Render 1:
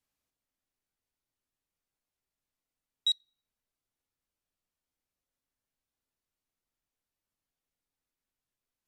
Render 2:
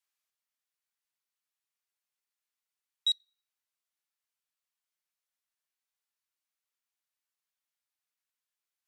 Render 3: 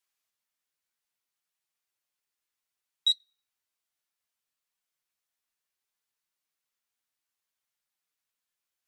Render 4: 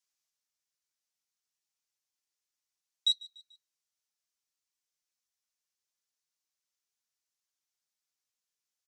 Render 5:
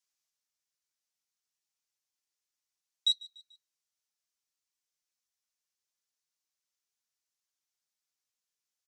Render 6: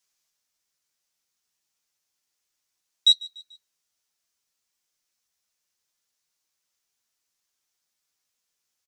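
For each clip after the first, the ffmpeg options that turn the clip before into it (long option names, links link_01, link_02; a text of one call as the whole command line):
ffmpeg -i in.wav -af "highpass=1100" out.wav
ffmpeg -i in.wav -af "flanger=delay=4.9:depth=8.7:regen=51:speed=0.63:shape=triangular,volume=7dB" out.wav
ffmpeg -i in.wav -af "equalizer=frequency=5900:width=1.1:gain=10.5,aecho=1:1:146|292|438:0.0891|0.0419|0.0197,volume=-7.5dB" out.wav
ffmpeg -i in.wav -af anull out.wav
ffmpeg -i in.wav -filter_complex "[0:a]asplit=2[link_01][link_02];[link_02]adelay=12,volume=-9dB[link_03];[link_01][link_03]amix=inputs=2:normalize=0,volume=8.5dB" out.wav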